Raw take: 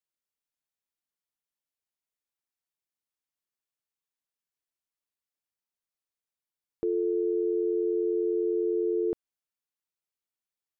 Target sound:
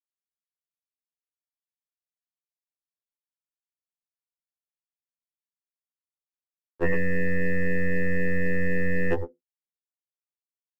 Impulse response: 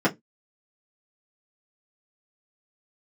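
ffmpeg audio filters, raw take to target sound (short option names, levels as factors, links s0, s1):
-filter_complex "[0:a]acontrast=34,aeval=exprs='val(0)*gte(abs(val(0)),0.00299)':c=same,equalizer=f=580:t=o:w=0.28:g=-14,aecho=1:1:106:0.316,asplit=2[s0][s1];[1:a]atrim=start_sample=2205[s2];[s1][s2]afir=irnorm=-1:irlink=0,volume=0.0668[s3];[s0][s3]amix=inputs=2:normalize=0,afreqshift=54,lowshelf=f=210:g=-5.5,aeval=exprs='0.211*(cos(1*acos(clip(val(0)/0.211,-1,1)))-cos(1*PI/2))+0.0266*(cos(6*acos(clip(val(0)/0.211,-1,1)))-cos(6*PI/2))':c=same,afftfilt=real='re*2*eq(mod(b,4),0)':imag='im*2*eq(mod(b,4),0)':win_size=2048:overlap=0.75,volume=2.51"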